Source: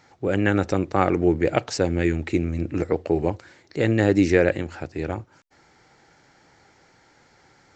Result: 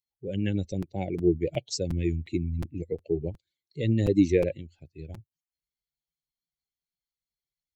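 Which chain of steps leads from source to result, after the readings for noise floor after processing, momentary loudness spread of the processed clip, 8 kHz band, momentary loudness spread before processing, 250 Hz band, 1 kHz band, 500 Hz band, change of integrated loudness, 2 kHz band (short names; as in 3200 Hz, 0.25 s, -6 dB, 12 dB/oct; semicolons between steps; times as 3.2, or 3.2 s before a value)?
under -85 dBFS, 21 LU, n/a, 12 LU, -5.5 dB, -18.0 dB, -7.0 dB, -5.5 dB, -16.0 dB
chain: per-bin expansion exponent 2; Butterworth band-stop 1200 Hz, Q 0.54; crackling interface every 0.36 s, samples 256, repeat, from 0.82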